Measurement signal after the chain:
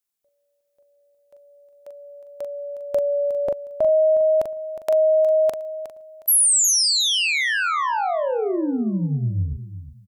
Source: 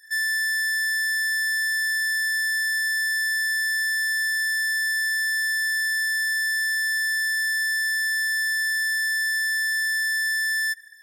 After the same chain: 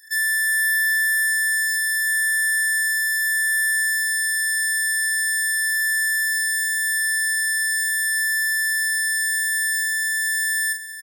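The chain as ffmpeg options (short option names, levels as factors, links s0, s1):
-filter_complex "[0:a]highshelf=f=6200:g=9,asplit=2[s0][s1];[s1]adelay=41,volume=0.473[s2];[s0][s2]amix=inputs=2:normalize=0,asplit=2[s3][s4];[s4]aecho=0:1:362|724|1086:0.237|0.0569|0.0137[s5];[s3][s5]amix=inputs=2:normalize=0"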